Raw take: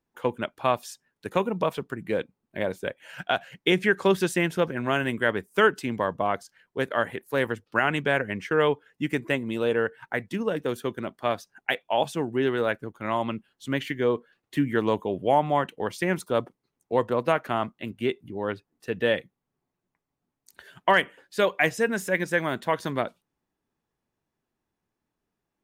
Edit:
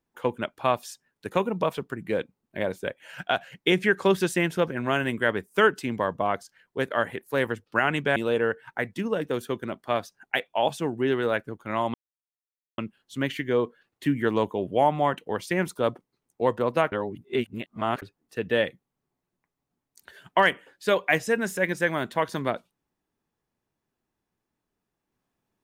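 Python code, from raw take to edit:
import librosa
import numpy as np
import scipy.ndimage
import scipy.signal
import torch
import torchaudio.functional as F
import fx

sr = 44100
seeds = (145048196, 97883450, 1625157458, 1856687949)

y = fx.edit(x, sr, fx.cut(start_s=8.16, length_s=1.35),
    fx.insert_silence(at_s=13.29, length_s=0.84),
    fx.reverse_span(start_s=17.43, length_s=1.1), tone=tone)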